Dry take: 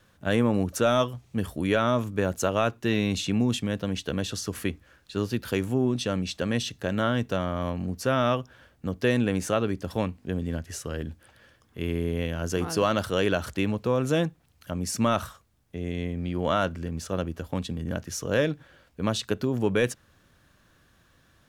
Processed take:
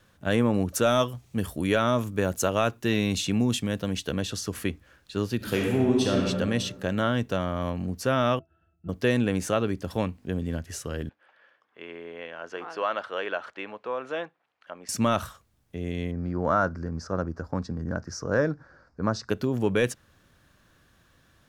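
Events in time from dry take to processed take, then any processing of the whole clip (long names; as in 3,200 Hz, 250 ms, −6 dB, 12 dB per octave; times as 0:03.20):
0:00.74–0:04.12: high-shelf EQ 6,900 Hz +6.5 dB
0:05.36–0:06.25: thrown reverb, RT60 1.5 s, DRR −1.5 dB
0:08.39–0:08.89: resonances in every octave E, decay 0.15 s
0:11.09–0:14.89: band-pass filter 670–2,200 Hz
0:16.11–0:19.30: drawn EQ curve 590 Hz 0 dB, 1,500 Hz +4 dB, 3,200 Hz −24 dB, 5,000 Hz +2 dB, 11,000 Hz −25 dB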